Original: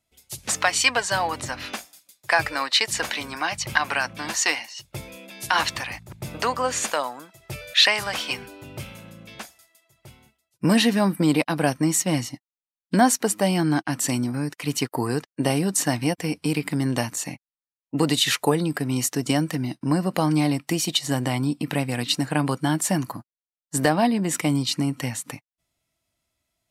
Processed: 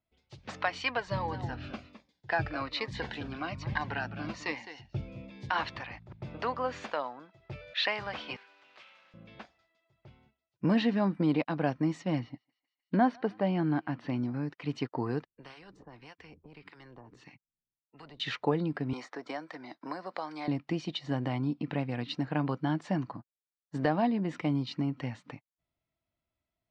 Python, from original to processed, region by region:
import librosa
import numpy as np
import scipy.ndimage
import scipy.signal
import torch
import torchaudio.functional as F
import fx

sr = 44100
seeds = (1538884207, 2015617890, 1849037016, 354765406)

y = fx.chain(x, sr, fx.low_shelf(hz=280.0, db=10.0),
    fx.echo_single(ms=210, db=-12.0),
    fx.notch_cascade(direction='falling', hz=1.2), at=(1.07, 5.5))
y = fx.chain(y, sr, fx.block_float(bits=3),
    fx.highpass(hz=1200.0, slope=12),
    fx.doppler_dist(depth_ms=0.18), at=(8.36, 9.14))
y = fx.chain(y, sr, fx.moving_average(points=6),
    fx.echo_thinned(ms=151, feedback_pct=76, hz=1000.0, wet_db=-24), at=(12.19, 14.18))
y = fx.chain(y, sr, fx.harmonic_tremolo(hz=1.7, depth_pct=100, crossover_hz=830.0),
    fx.curve_eq(hz=(160.0, 400.0, 610.0, 1100.0), db=(0, -10, -29, -24)),
    fx.spectral_comp(ratio=10.0), at=(15.26, 18.2))
y = fx.chain(y, sr, fx.highpass(hz=670.0, slope=12),
    fx.peak_eq(hz=2800.0, db=-12.5, octaves=0.22),
    fx.band_squash(depth_pct=70), at=(18.93, 20.48))
y = scipy.signal.sosfilt(scipy.signal.butter(4, 4600.0, 'lowpass', fs=sr, output='sos'), y)
y = fx.high_shelf(y, sr, hz=2500.0, db=-10.5)
y = y * 10.0 ** (-7.0 / 20.0)